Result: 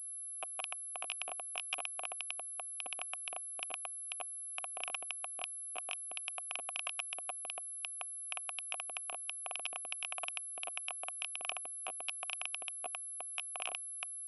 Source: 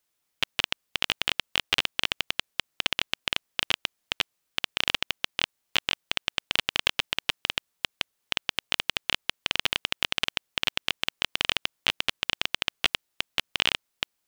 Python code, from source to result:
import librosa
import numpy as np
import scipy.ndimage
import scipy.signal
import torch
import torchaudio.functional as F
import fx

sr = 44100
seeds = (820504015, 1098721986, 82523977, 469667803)

y = fx.filter_lfo_bandpass(x, sr, shape='sine', hz=8.3, low_hz=330.0, high_hz=4200.0, q=0.89)
y = fx.vowel_filter(y, sr, vowel='a')
y = fx.pwm(y, sr, carrier_hz=11000.0)
y = y * librosa.db_to_amplitude(2.5)